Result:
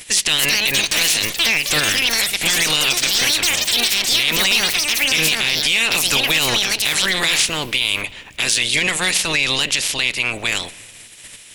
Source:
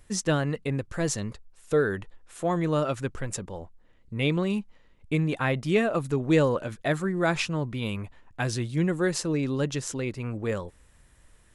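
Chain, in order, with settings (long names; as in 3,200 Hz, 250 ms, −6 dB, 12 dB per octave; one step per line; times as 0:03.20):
ceiling on every frequency bin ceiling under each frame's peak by 27 dB
0:01.89–0:02.60: flat-topped bell 680 Hz −8 dB
on a send at −21.5 dB: convolution reverb RT60 1.8 s, pre-delay 21 ms
on the sum: soft clipping −19 dBFS, distortion −12 dB
delay with pitch and tempo change per echo 311 ms, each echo +7 semitones, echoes 3
high shelf with overshoot 1,800 Hz +11 dB, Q 1.5
brickwall limiter −11.5 dBFS, peak gain reduction 10.5 dB
level +5.5 dB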